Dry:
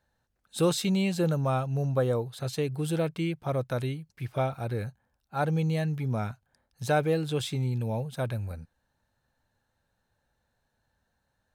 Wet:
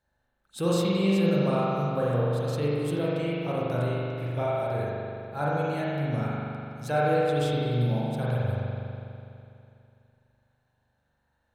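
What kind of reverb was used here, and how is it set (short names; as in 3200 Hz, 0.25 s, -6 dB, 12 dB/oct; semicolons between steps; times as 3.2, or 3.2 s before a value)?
spring tank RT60 2.7 s, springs 41 ms, chirp 55 ms, DRR -7 dB; gain -5 dB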